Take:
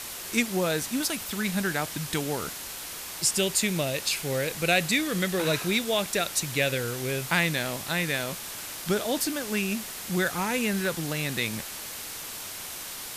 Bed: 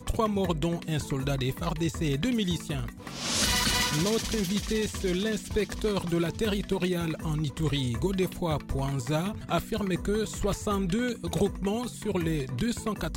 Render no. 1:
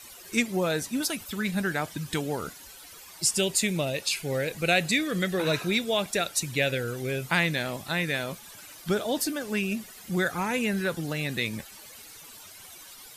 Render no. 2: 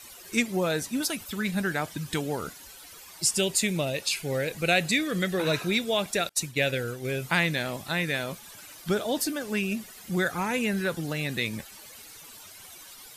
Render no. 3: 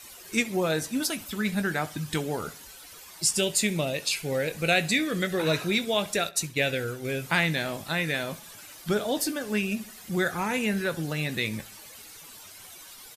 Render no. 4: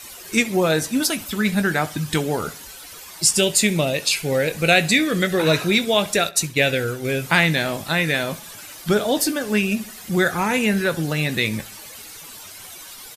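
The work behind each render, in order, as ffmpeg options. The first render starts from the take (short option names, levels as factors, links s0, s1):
-af "afftdn=nr=14:nf=-38"
-filter_complex "[0:a]asettb=1/sr,asplit=3[s0][s1][s2];[s0]atrim=end=6.294[s3];[s1]atrim=start=6.29:end=7.05,asetpts=PTS-STARTPTS,afade=t=in:d=0.004:c=qsin,afade=t=out:st=0.756:d=0.004:c=qsin,agate=range=0.0224:threshold=0.0282:ratio=3:release=100:detection=peak[s4];[s2]atrim=start=7.046[s5];[s3][s4]acrossfade=d=0.004:c1=hsin:c2=qsin[s6];[s6][s5]acrossfade=d=0.004:c1=qsin:c2=hsin"
-filter_complex "[0:a]asplit=2[s0][s1];[s1]adelay=19,volume=0.266[s2];[s0][s2]amix=inputs=2:normalize=0,asplit=2[s3][s4];[s4]adelay=66,lowpass=f=4700:p=1,volume=0.112,asplit=2[s5][s6];[s6]adelay=66,lowpass=f=4700:p=1,volume=0.43,asplit=2[s7][s8];[s8]adelay=66,lowpass=f=4700:p=1,volume=0.43[s9];[s3][s5][s7][s9]amix=inputs=4:normalize=0"
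-af "volume=2.37,alimiter=limit=0.708:level=0:latency=1"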